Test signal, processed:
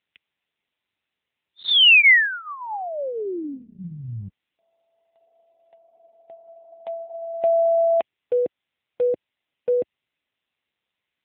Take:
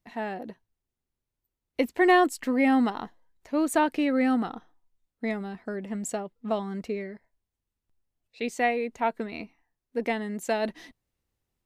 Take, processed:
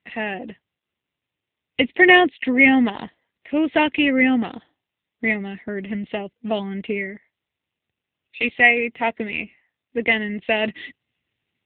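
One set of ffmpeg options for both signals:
-af "highshelf=f=1.7k:t=q:w=3:g=8,bandreject=f=2.3k:w=11,volume=6dB" -ar 8000 -c:a libopencore_amrnb -b:a 7950

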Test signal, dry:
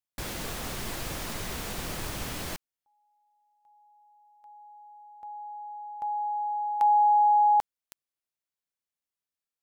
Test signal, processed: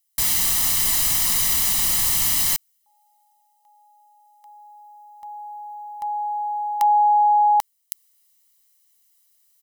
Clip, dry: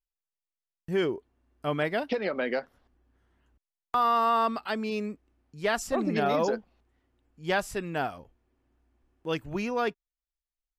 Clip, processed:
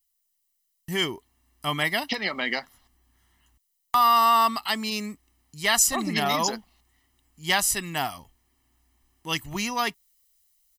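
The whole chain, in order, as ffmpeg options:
-af "areverse,acompressor=mode=upward:threshold=-60dB:ratio=1.5:attack=8.1:release=912:knee=2.83:detection=peak,areverse,aecho=1:1:1:0.64,crystalizer=i=8.5:c=0,volume=-2dB"

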